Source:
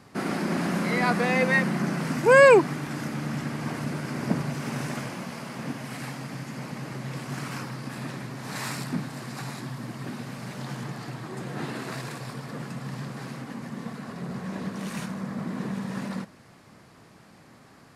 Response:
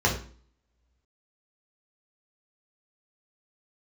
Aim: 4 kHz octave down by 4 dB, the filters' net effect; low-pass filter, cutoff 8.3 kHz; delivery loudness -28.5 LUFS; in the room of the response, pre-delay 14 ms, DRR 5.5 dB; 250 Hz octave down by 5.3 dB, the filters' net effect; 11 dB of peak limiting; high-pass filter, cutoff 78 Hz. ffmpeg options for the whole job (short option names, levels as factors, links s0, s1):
-filter_complex "[0:a]highpass=78,lowpass=8300,equalizer=f=250:t=o:g=-7.5,equalizer=f=4000:t=o:g=-5,alimiter=limit=0.126:level=0:latency=1,asplit=2[s0][s1];[1:a]atrim=start_sample=2205,adelay=14[s2];[s1][s2]afir=irnorm=-1:irlink=0,volume=0.1[s3];[s0][s3]amix=inputs=2:normalize=0,volume=1.58"